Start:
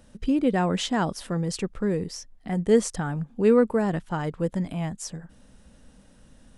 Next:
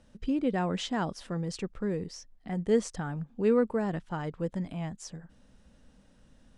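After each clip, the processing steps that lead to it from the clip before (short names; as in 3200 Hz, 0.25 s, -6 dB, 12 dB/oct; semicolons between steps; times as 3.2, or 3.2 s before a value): LPF 7200 Hz 12 dB/oct; gain -6 dB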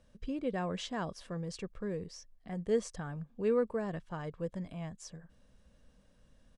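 comb 1.8 ms, depth 32%; gain -5.5 dB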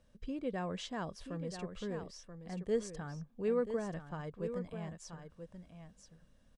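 echo 0.982 s -9 dB; gain -3 dB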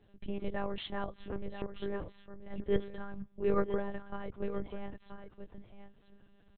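monotone LPC vocoder at 8 kHz 200 Hz; gain +3.5 dB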